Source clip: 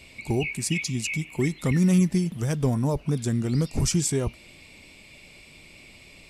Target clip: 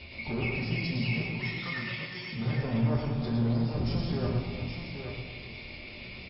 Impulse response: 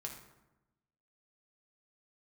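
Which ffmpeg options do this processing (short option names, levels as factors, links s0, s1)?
-filter_complex "[0:a]asettb=1/sr,asplit=3[s0][s1][s2];[s0]atrim=end=1.234[s3];[s1]atrim=start=1.23:end=2.33,asetpts=PTS-STARTPTS,afade=t=in:d=0.004:c=qsin,afade=t=out:st=1.096:d=0.004:c=qsin,highpass=1400[s4];[s2]atrim=start=2.326[s5];[s3][s4]acrossfade=d=0.004:c1=hsin:c2=qsin[s6];[s6][s5]acrossfade=d=0.004:c1=qsin:c2=hsin,alimiter=limit=0.0708:level=0:latency=1:release=172,asoftclip=type=tanh:threshold=0.0237,tremolo=f=6.8:d=0.29,aecho=1:1:111|360|824:0.531|0.266|0.422[s7];[1:a]atrim=start_sample=2205,afade=t=out:st=0.42:d=0.01,atrim=end_sample=18963,asetrate=24696,aresample=44100[s8];[s7][s8]afir=irnorm=-1:irlink=0,volume=1.68" -ar 12000 -c:a libmp3lame -b:a 24k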